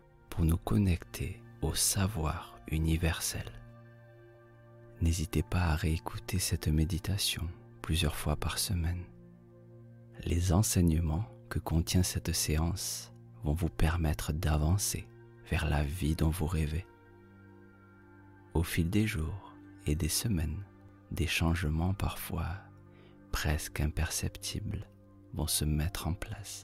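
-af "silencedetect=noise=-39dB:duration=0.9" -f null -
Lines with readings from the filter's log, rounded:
silence_start: 3.58
silence_end: 5.01 | silence_duration: 1.43
silence_start: 9.03
silence_end: 10.20 | silence_duration: 1.17
silence_start: 16.81
silence_end: 18.55 | silence_duration: 1.74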